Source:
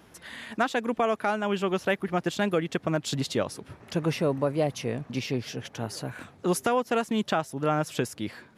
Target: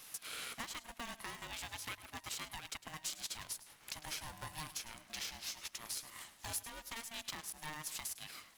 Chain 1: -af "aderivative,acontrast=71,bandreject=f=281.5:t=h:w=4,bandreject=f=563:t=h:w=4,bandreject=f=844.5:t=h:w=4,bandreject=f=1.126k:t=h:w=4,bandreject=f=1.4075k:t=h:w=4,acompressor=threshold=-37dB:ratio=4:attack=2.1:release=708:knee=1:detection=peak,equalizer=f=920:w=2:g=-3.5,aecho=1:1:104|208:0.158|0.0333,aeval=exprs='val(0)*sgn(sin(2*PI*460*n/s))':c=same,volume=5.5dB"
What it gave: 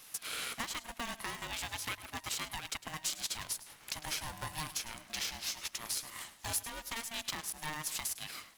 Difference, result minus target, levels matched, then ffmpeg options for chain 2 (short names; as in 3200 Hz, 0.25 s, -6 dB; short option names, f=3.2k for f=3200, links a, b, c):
compressor: peak gain reduction -5.5 dB
-af "aderivative,acontrast=71,bandreject=f=281.5:t=h:w=4,bandreject=f=563:t=h:w=4,bandreject=f=844.5:t=h:w=4,bandreject=f=1.126k:t=h:w=4,bandreject=f=1.4075k:t=h:w=4,acompressor=threshold=-44.5dB:ratio=4:attack=2.1:release=708:knee=1:detection=peak,equalizer=f=920:w=2:g=-3.5,aecho=1:1:104|208:0.158|0.0333,aeval=exprs='val(0)*sgn(sin(2*PI*460*n/s))':c=same,volume=5.5dB"